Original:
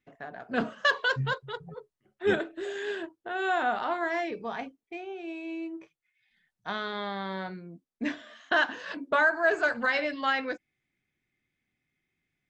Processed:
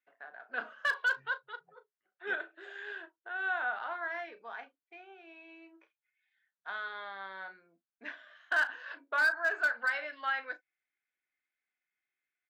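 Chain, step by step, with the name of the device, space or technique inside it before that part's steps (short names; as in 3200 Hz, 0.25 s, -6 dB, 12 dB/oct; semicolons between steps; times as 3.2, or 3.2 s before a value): megaphone (BPF 670–3600 Hz; bell 1500 Hz +8.5 dB 0.33 oct; hard clip -14 dBFS, distortion -20 dB; doubler 36 ms -14 dB); gain -8.5 dB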